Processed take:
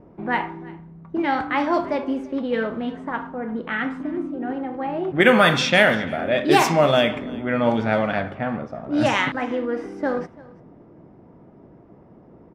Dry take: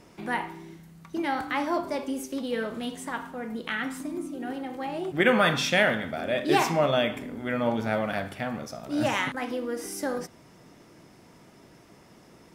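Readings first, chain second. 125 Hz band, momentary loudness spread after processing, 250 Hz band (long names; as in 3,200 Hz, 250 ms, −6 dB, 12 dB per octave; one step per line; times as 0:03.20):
+6.5 dB, 13 LU, +6.5 dB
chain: low-pass that shuts in the quiet parts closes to 690 Hz, open at −18.5 dBFS
single-tap delay 340 ms −22.5 dB
level +6.5 dB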